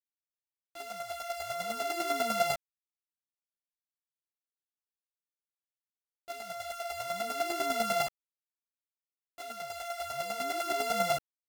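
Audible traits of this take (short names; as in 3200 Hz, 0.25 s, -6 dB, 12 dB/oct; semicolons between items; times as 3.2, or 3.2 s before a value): a buzz of ramps at a fixed pitch in blocks of 64 samples; chopped level 10 Hz, depth 60%, duty 10%; a quantiser's noise floor 10-bit, dither none; a shimmering, thickened sound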